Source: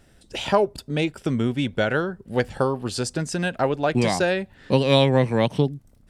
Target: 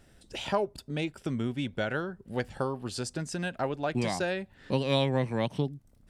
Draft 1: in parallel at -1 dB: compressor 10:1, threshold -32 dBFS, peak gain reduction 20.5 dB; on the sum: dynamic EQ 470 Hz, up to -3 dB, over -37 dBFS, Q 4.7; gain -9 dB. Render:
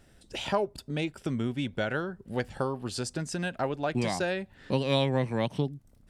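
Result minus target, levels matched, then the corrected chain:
compressor: peak gain reduction -6.5 dB
in parallel at -1 dB: compressor 10:1, threshold -39.5 dBFS, peak gain reduction 27 dB; on the sum: dynamic EQ 470 Hz, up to -3 dB, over -37 dBFS, Q 4.7; gain -9 dB

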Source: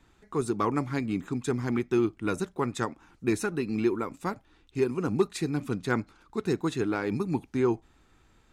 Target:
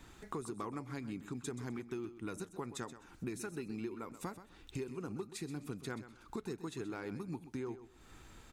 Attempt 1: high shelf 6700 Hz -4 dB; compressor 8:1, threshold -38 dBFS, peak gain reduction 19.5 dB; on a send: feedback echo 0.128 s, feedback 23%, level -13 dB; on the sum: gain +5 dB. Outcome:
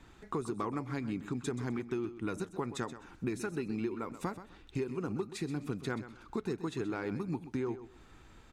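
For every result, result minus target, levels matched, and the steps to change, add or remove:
compressor: peak gain reduction -6 dB; 8000 Hz band -6.0 dB
change: compressor 8:1, threshold -45 dBFS, peak gain reduction 25.5 dB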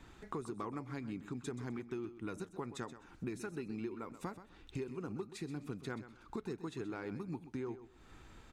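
8000 Hz band -6.0 dB
change: high shelf 6700 Hz +7.5 dB

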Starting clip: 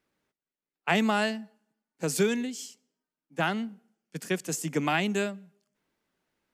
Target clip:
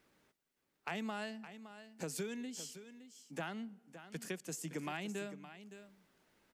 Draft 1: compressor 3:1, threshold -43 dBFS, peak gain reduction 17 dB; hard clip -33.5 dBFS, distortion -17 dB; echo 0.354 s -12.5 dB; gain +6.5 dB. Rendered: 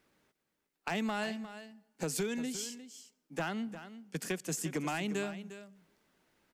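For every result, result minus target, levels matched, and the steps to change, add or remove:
echo 0.211 s early; compressor: peak gain reduction -7 dB
change: echo 0.565 s -12.5 dB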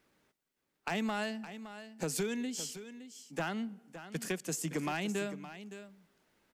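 compressor: peak gain reduction -7 dB
change: compressor 3:1, threshold -53.5 dBFS, peak gain reduction 24 dB

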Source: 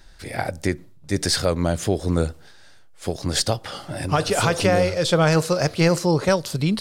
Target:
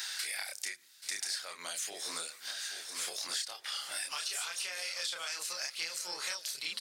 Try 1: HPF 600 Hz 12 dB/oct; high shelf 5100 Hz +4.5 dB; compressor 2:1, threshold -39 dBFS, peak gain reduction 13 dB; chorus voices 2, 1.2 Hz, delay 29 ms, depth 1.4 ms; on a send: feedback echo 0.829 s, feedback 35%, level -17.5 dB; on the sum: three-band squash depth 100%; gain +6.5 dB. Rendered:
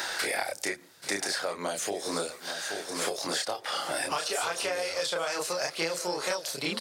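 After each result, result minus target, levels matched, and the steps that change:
500 Hz band +14.5 dB; compressor: peak gain reduction -4 dB
change: HPF 2100 Hz 12 dB/oct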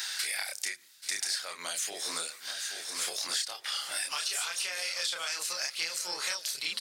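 compressor: peak gain reduction -4 dB
change: compressor 2:1, threshold -47.5 dBFS, peak gain reduction 17 dB

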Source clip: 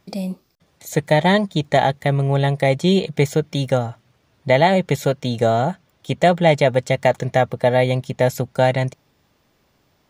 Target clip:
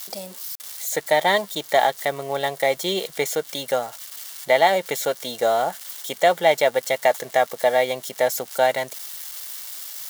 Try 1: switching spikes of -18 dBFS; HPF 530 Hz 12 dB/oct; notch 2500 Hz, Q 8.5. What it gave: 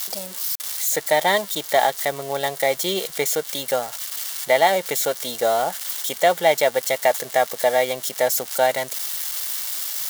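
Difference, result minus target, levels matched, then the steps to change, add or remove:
switching spikes: distortion +7 dB
change: switching spikes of -25.5 dBFS

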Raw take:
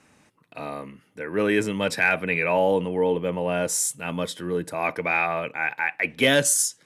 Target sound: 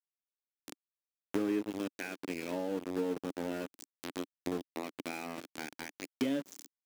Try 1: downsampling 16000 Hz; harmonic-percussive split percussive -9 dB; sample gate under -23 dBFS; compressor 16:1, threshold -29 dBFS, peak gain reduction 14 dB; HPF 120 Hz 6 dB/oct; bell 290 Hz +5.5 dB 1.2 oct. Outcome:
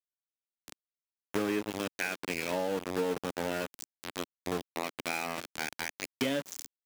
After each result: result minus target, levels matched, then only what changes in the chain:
compressor: peak gain reduction -9 dB; 250 Hz band -4.0 dB
change: compressor 16:1, threshold -38.5 dBFS, peak gain reduction 23 dB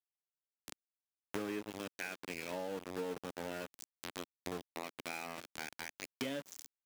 250 Hz band -4.5 dB
change: bell 290 Hz +16.5 dB 1.2 oct

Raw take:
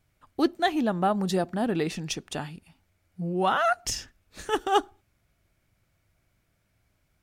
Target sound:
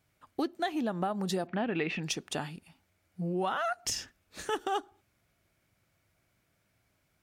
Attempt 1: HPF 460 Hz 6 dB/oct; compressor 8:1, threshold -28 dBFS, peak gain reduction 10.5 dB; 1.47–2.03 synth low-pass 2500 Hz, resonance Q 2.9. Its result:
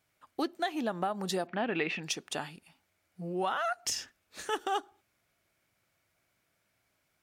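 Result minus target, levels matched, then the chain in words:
125 Hz band -5.0 dB
HPF 140 Hz 6 dB/oct; compressor 8:1, threshold -28 dBFS, peak gain reduction 12 dB; 1.47–2.03 synth low-pass 2500 Hz, resonance Q 2.9

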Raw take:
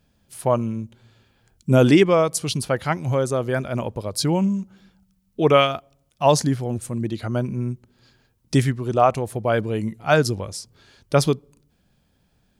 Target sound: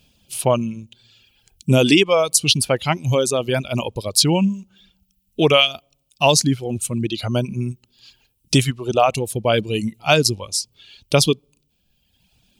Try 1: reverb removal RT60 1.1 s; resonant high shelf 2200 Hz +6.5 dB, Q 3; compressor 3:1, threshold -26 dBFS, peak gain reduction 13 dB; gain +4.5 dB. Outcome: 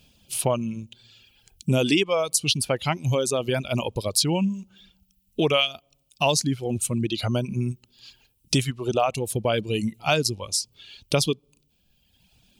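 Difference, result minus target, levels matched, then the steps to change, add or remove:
compressor: peak gain reduction +7 dB
change: compressor 3:1, threshold -15.5 dBFS, peak gain reduction 6 dB

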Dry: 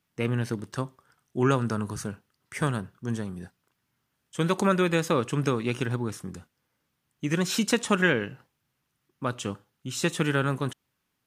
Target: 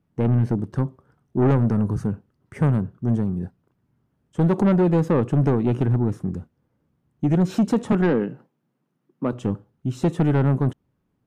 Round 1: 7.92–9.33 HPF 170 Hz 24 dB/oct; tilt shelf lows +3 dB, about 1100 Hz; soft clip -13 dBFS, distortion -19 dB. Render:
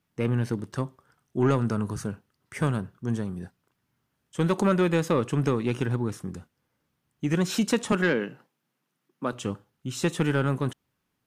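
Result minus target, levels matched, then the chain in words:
1000 Hz band +3.0 dB
7.92–9.33 HPF 170 Hz 24 dB/oct; tilt shelf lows +13 dB, about 1100 Hz; soft clip -13 dBFS, distortion -11 dB

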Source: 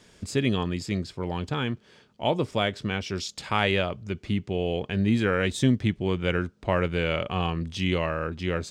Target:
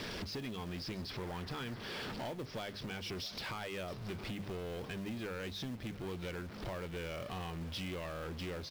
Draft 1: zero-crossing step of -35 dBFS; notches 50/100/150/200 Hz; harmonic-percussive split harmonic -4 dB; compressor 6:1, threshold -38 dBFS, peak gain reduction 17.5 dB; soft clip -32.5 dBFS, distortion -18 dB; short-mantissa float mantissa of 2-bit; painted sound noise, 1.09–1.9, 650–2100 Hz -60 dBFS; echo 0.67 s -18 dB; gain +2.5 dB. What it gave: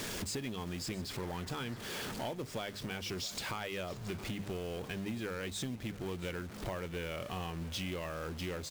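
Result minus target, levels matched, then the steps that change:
8000 Hz band +7.5 dB; soft clip: distortion -7 dB
add after compressor: steep low-pass 5700 Hz 72 dB/oct; change: soft clip -39 dBFS, distortion -11 dB

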